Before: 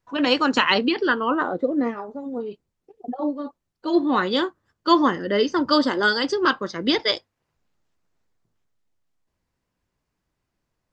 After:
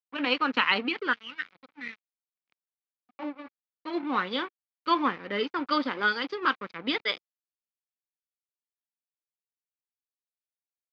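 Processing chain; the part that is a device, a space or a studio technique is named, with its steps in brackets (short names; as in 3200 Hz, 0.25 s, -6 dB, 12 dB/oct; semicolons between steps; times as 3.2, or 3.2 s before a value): 1.13–3.19 EQ curve 100 Hz 0 dB, 1100 Hz -27 dB, 1900 Hz +11 dB; blown loudspeaker (crossover distortion -34 dBFS; speaker cabinet 170–4200 Hz, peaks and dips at 360 Hz -6 dB, 620 Hz -5 dB, 1300 Hz +4 dB, 2300 Hz +8 dB); gain -6 dB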